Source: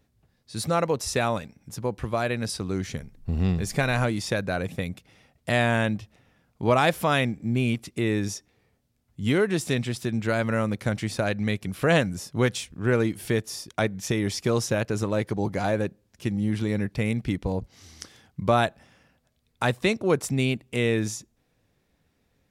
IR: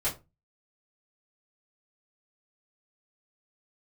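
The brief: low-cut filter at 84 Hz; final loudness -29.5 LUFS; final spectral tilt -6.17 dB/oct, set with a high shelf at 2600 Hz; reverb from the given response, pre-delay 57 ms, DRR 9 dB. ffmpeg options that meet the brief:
-filter_complex "[0:a]highpass=84,highshelf=f=2.6k:g=-9,asplit=2[a][b];[1:a]atrim=start_sample=2205,adelay=57[c];[b][c]afir=irnorm=-1:irlink=0,volume=-16dB[d];[a][d]amix=inputs=2:normalize=0,volume=-3dB"

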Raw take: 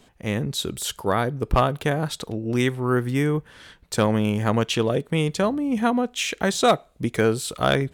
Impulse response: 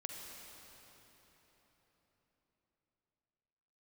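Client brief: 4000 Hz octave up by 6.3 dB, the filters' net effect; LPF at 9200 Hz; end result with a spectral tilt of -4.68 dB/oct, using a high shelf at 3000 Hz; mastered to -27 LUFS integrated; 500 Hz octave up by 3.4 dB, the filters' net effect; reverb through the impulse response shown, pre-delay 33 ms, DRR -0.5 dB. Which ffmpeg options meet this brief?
-filter_complex "[0:a]lowpass=9.2k,equalizer=f=500:t=o:g=4,highshelf=f=3k:g=3,equalizer=f=4k:t=o:g=5.5,asplit=2[a][b];[1:a]atrim=start_sample=2205,adelay=33[c];[b][c]afir=irnorm=-1:irlink=0,volume=2dB[d];[a][d]amix=inputs=2:normalize=0,volume=-9dB"

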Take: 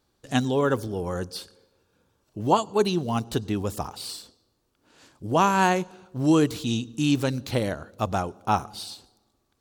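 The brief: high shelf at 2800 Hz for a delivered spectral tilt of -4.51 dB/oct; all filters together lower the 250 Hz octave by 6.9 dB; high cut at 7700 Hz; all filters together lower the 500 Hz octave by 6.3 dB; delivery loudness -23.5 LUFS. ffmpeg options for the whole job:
-af "lowpass=7.7k,equalizer=f=250:t=o:g=-7.5,equalizer=f=500:t=o:g=-5.5,highshelf=f=2.8k:g=-3.5,volume=6.5dB"

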